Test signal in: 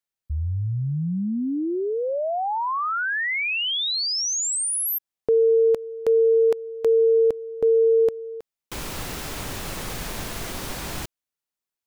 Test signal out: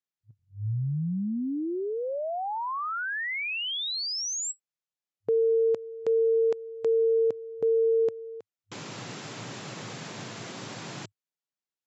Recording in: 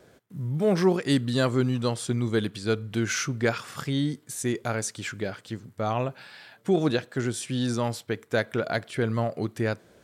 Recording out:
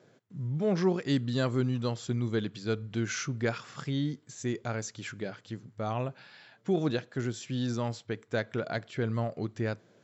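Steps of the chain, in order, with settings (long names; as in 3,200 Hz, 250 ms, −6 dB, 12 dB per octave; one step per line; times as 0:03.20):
low-shelf EQ 210 Hz +4.5 dB
brick-wall band-pass 100–7,700 Hz
level −6.5 dB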